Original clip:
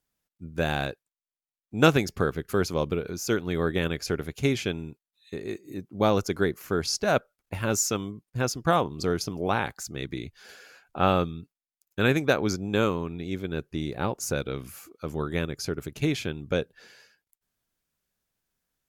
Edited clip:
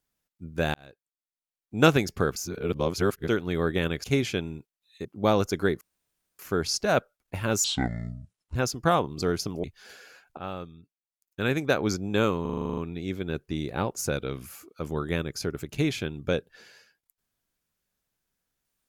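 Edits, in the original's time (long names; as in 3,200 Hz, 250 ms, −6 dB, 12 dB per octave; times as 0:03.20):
0:00.74–0:01.77: fade in
0:02.36–0:03.28: reverse
0:04.04–0:04.36: remove
0:05.37–0:05.82: remove
0:06.58: splice in room tone 0.58 s
0:07.83–0:08.37: play speed 59%
0:09.45–0:10.23: remove
0:10.97–0:12.46: fade in quadratic, from −14 dB
0:13.01: stutter 0.04 s, 10 plays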